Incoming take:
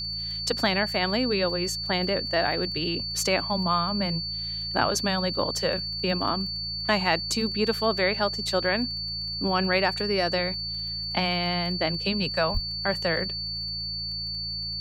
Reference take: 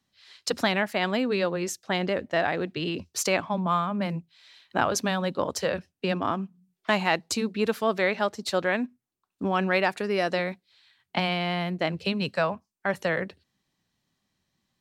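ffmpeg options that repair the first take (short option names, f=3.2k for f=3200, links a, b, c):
-filter_complex "[0:a]adeclick=t=4,bandreject=f=55.5:t=h:w=4,bandreject=f=111:t=h:w=4,bandreject=f=166.5:t=h:w=4,bandreject=f=4.5k:w=30,asplit=3[a][b][c];[a]afade=t=out:st=12.53:d=0.02[d];[b]highpass=f=140:w=0.5412,highpass=f=140:w=1.3066,afade=t=in:st=12.53:d=0.02,afade=t=out:st=12.65:d=0.02[e];[c]afade=t=in:st=12.65:d=0.02[f];[d][e][f]amix=inputs=3:normalize=0"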